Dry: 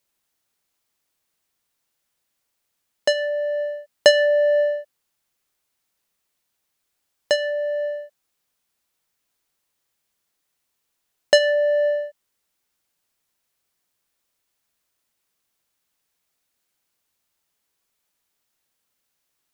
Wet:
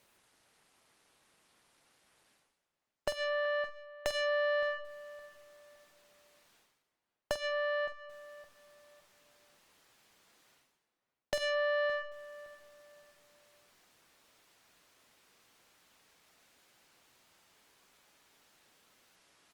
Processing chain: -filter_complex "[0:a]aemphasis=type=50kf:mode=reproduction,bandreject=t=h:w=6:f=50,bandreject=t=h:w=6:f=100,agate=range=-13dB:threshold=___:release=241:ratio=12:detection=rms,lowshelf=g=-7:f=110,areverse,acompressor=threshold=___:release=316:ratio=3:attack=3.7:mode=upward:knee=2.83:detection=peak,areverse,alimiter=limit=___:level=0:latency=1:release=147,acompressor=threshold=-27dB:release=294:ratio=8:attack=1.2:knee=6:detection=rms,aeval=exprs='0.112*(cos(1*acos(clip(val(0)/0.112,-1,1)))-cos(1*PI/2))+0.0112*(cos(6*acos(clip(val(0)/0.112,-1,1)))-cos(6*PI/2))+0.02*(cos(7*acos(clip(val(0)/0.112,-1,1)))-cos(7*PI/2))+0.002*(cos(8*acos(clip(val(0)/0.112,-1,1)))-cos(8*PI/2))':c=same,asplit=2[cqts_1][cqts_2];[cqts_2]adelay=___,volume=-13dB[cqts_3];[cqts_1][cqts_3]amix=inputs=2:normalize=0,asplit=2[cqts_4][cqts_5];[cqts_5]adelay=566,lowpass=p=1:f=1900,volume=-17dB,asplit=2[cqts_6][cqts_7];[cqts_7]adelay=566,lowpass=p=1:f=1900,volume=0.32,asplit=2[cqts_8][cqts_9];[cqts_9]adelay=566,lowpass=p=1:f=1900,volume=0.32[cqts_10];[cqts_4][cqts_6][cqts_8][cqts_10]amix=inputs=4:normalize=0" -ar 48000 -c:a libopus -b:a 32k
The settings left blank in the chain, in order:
-24dB, -29dB, -15dB, 47